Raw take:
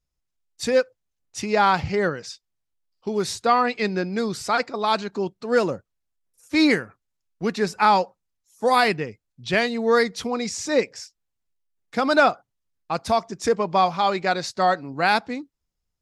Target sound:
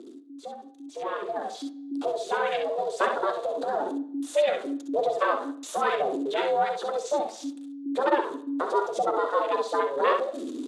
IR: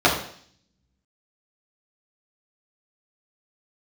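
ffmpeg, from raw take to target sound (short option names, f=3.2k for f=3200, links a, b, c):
-filter_complex "[0:a]aeval=exprs='val(0)+0.5*0.075*sgn(val(0))':c=same,afwtdn=0.0708,equalizer=f=2k:t=o:w=1.3:g=-6.5,acompressor=threshold=-39dB:ratio=2.5,atempo=1.5,aphaser=in_gain=1:out_gain=1:delay=4.2:decay=0.39:speed=0.99:type=sinusoidal,aeval=exprs='val(0)*sin(2*PI*280*n/s)':c=same,highpass=f=360:w=0.5412,highpass=f=360:w=1.3066,equalizer=f=800:t=q:w=4:g=-5,equalizer=f=3.6k:t=q:w=4:g=8,equalizer=f=5.3k:t=q:w=4:g=-8,lowpass=f=9.2k:w=0.5412,lowpass=f=9.2k:w=1.3066,aecho=1:1:57|66:0.299|0.398,asplit=2[a][b];[1:a]atrim=start_sample=2205[c];[b][c]afir=irnorm=-1:irlink=0,volume=-30.5dB[d];[a][d]amix=inputs=2:normalize=0,dynaudnorm=f=890:g=3:m=14.5dB,volume=-3dB"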